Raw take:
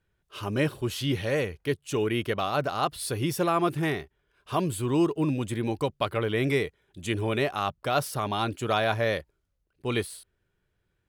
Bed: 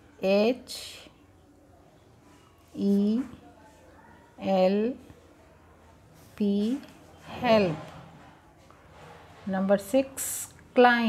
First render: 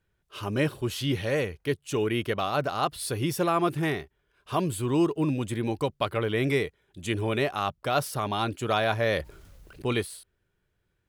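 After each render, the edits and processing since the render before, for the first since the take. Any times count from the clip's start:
0:09.01–0:09.93: envelope flattener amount 50%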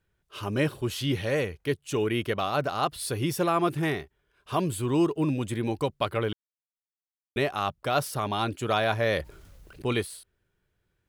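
0:06.33–0:07.36: silence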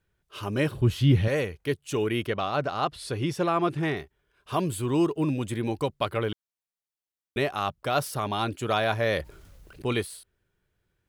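0:00.71–0:01.28: bass and treble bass +12 dB, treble −6 dB
0:02.27–0:03.97: high-frequency loss of the air 61 metres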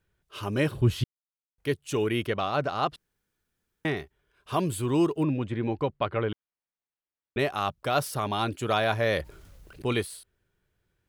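0:01.04–0:01.58: silence
0:02.96–0:03.85: fill with room tone
0:05.23–0:07.39: low-pass filter 2,600 Hz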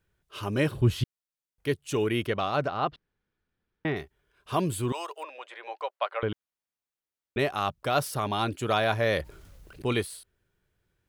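0:02.68–0:03.96: high-frequency loss of the air 210 metres
0:04.92–0:06.23: Butterworth high-pass 560 Hz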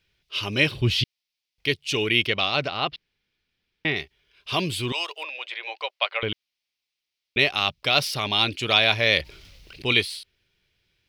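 flat-topped bell 3,400 Hz +15 dB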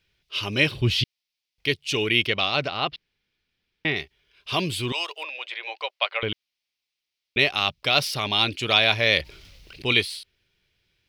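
no processing that can be heard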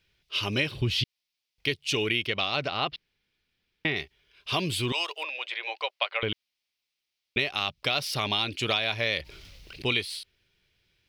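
downward compressor 6 to 1, threshold −23 dBFS, peak gain reduction 10 dB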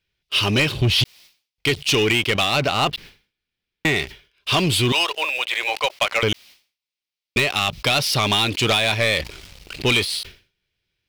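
leveller curve on the samples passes 3
level that may fall only so fast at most 150 dB per second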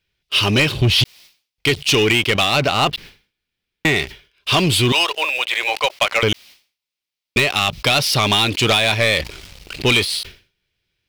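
level +3 dB

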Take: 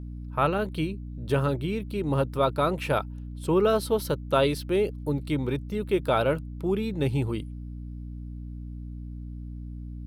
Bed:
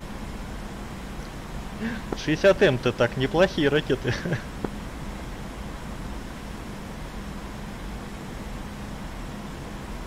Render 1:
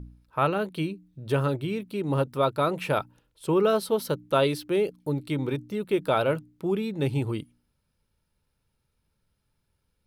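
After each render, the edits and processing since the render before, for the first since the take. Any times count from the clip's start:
hum removal 60 Hz, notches 5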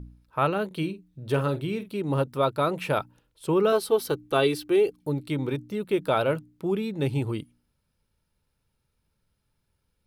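0:00.66–0:01.97: double-tracking delay 48 ms −12.5 dB
0:03.72–0:05.02: comb filter 2.6 ms, depth 60%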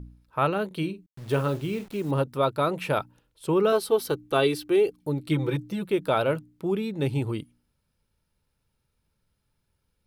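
0:01.06–0:02.11: hold until the input has moved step −44.5 dBFS
0:05.26–0:05.89: comb filter 6 ms, depth 95%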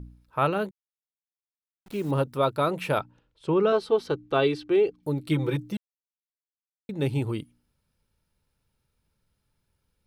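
0:00.71–0:01.86: silence
0:03.00–0:05.03: high-frequency loss of the air 120 metres
0:05.77–0:06.89: silence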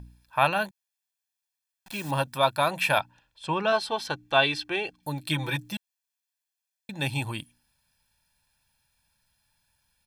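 tilt shelving filter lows −8 dB, about 650 Hz
comb filter 1.2 ms, depth 72%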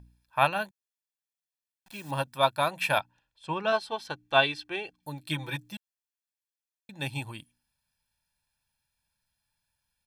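expander for the loud parts 1.5 to 1, over −35 dBFS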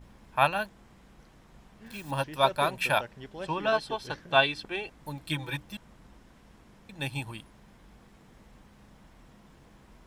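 mix in bed −20 dB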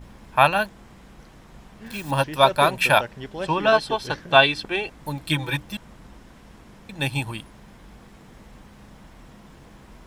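level +8.5 dB
brickwall limiter −1 dBFS, peak gain reduction 2.5 dB

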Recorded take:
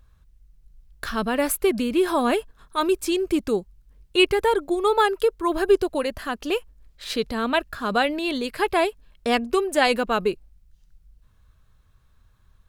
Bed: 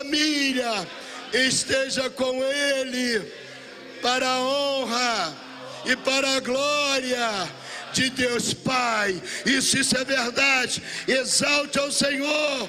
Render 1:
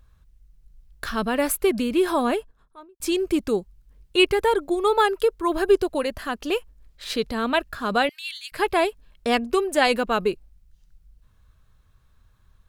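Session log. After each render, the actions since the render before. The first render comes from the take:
0:02.08–0:03.00: fade out and dull
0:08.09–0:08.52: Bessel high-pass filter 2,800 Hz, order 8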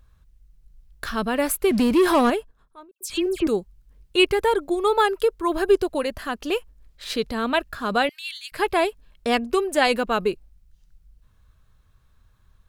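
0:01.71–0:02.30: leveller curve on the samples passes 2
0:02.91–0:03.47: all-pass dispersion lows, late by 98 ms, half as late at 2,900 Hz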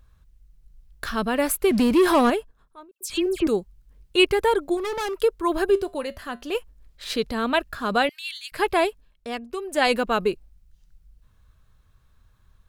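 0:04.77–0:05.19: gain into a clipping stage and back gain 26 dB
0:05.70–0:06.55: tuned comb filter 79 Hz, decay 0.24 s, harmonics odd, mix 50%
0:08.86–0:09.89: duck −10 dB, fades 0.29 s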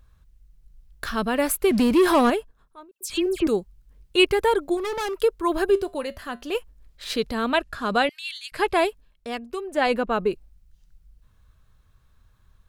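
0:07.54–0:08.77: low-pass filter 11,000 Hz
0:09.60–0:10.30: high-shelf EQ 4,000 Hz → 2,300 Hz −11 dB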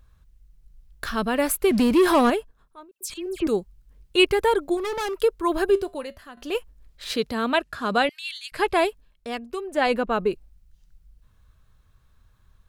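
0:03.14–0:03.56: fade in, from −15 dB
0:05.76–0:06.37: fade out, to −13.5 dB
0:07.11–0:07.98: high-pass filter 71 Hz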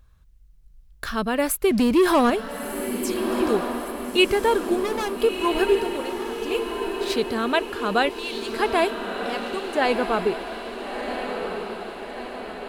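feedback delay with all-pass diffusion 1,358 ms, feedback 58%, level −6.5 dB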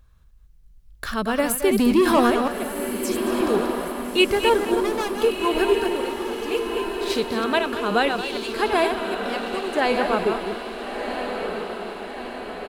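delay that plays each chunk backwards 155 ms, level −6 dB
single-tap delay 221 ms −13 dB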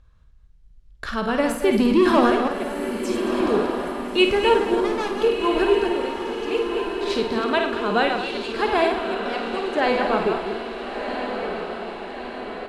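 high-frequency loss of the air 70 metres
flutter between parallel walls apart 8.9 metres, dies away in 0.42 s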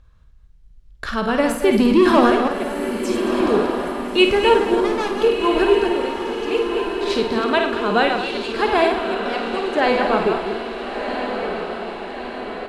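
level +3 dB

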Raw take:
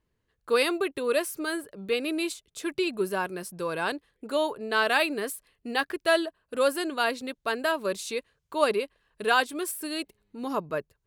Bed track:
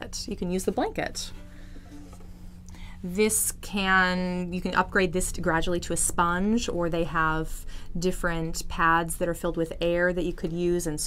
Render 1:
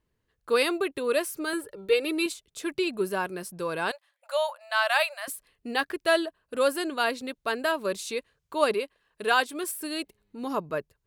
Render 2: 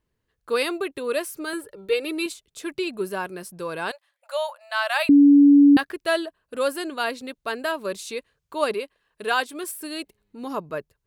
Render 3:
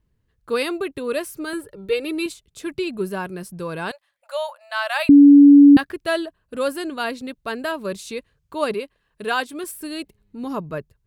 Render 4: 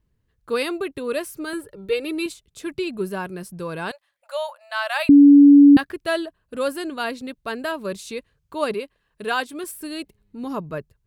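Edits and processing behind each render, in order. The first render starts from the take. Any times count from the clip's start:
0:01.53–0:02.26: comb filter 2.2 ms, depth 80%; 0:03.91–0:05.28: linear-phase brick-wall high-pass 530 Hz; 0:08.74–0:09.64: low-shelf EQ 130 Hz −10 dB
0:05.09–0:05.77: beep over 285 Hz −9 dBFS
bass and treble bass +11 dB, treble −1 dB
level −1 dB

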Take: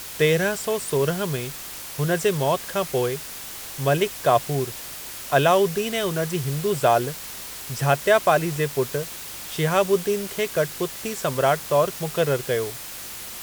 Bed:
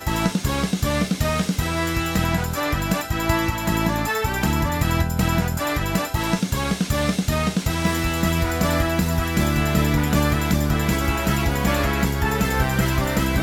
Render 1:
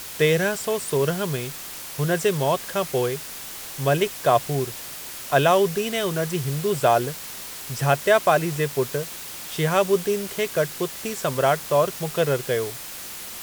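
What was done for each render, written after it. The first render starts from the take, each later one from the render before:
hum removal 50 Hz, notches 2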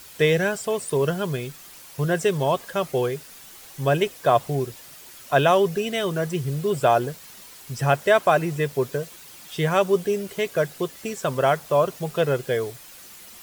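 broadband denoise 10 dB, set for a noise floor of −36 dBFS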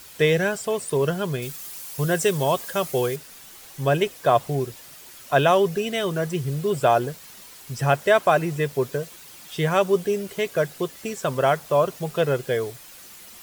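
0:01.42–0:03.16: high-shelf EQ 5,200 Hz +9.5 dB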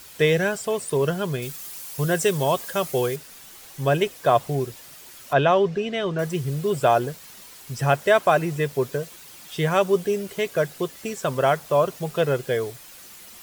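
0:05.33–0:06.19: high-frequency loss of the air 140 metres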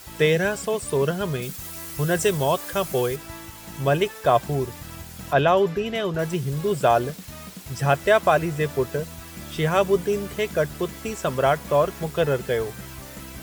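mix in bed −19 dB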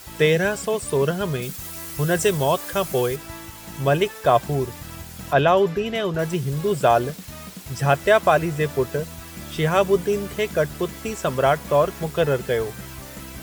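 level +1.5 dB

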